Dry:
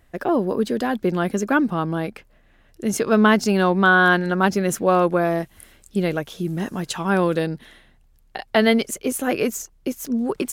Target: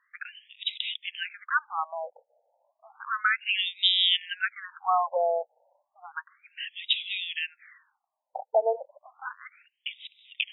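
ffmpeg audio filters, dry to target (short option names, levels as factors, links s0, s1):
-af "aexciter=amount=5.1:drive=7.5:freq=2700,afftfilt=real='re*between(b*sr/1024,640*pow(2800/640,0.5+0.5*sin(2*PI*0.32*pts/sr))/1.41,640*pow(2800/640,0.5+0.5*sin(2*PI*0.32*pts/sr))*1.41)':imag='im*between(b*sr/1024,640*pow(2800/640,0.5+0.5*sin(2*PI*0.32*pts/sr))/1.41,640*pow(2800/640,0.5+0.5*sin(2*PI*0.32*pts/sr))*1.41)':win_size=1024:overlap=0.75,volume=0.794"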